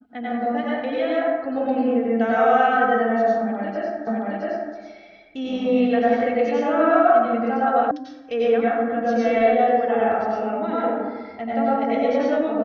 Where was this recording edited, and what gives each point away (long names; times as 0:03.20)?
0:04.07: the same again, the last 0.67 s
0:07.91: cut off before it has died away